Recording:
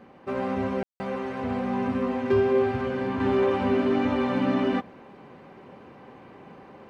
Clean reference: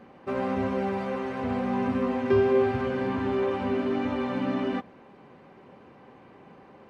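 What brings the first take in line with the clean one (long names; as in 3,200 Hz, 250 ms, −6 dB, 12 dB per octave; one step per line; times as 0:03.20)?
clipped peaks rebuilt −13.5 dBFS
ambience match 0:00.83–0:01.00
level 0 dB, from 0:03.20 −4 dB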